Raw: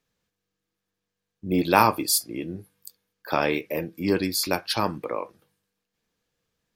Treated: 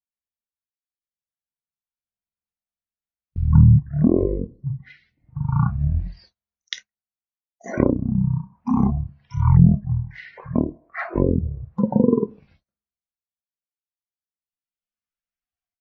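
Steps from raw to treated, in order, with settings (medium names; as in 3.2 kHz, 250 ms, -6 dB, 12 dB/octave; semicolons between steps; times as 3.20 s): gate -45 dBFS, range -30 dB; low-pass that closes with the level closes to 520 Hz, closed at -19 dBFS; tremolo 0.75 Hz, depth 57%; level rider gain up to 16 dB; reverb removal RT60 1.3 s; speed mistake 78 rpm record played at 33 rpm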